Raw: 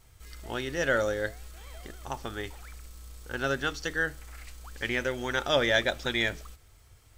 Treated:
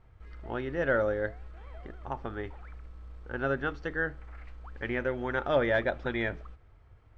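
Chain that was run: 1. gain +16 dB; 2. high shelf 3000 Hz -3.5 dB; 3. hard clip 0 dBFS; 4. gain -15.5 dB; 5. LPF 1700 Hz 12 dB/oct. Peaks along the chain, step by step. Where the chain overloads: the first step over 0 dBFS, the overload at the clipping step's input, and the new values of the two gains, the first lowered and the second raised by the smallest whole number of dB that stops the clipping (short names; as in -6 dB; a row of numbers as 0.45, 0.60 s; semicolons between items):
+5.0, +4.5, 0.0, -15.5, -15.0 dBFS; step 1, 4.5 dB; step 1 +11 dB, step 4 -10.5 dB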